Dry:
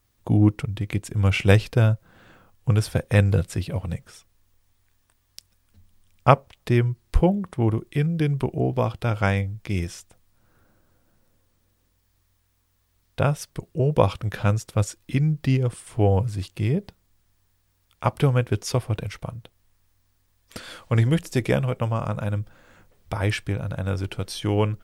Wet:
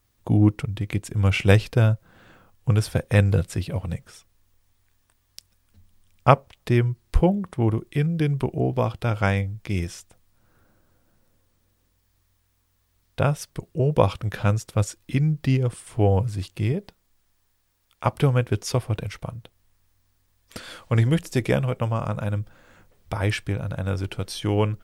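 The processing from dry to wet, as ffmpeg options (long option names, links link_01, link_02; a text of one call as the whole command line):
ffmpeg -i in.wav -filter_complex "[0:a]asettb=1/sr,asplit=3[link_01][link_02][link_03];[link_01]atrim=end=16.724[link_04];[link_02]atrim=start=16.72:end=18.06,asetpts=PTS-STARTPTS,afade=type=in:duration=0.004:curve=qsin,afade=type=out:start_time=1.336:duration=0.004:curve=qsin,equalizer=frequency=87:width=0.5:gain=-7.5[link_05];[link_03]atrim=start=18.056[link_06];[link_04][link_05]acrossfade=duration=0.004:curve1=hsin:curve2=qsin[link_07];[link_07][link_06]acrossfade=duration=0.004:curve1=qsin:curve2=hsin" out.wav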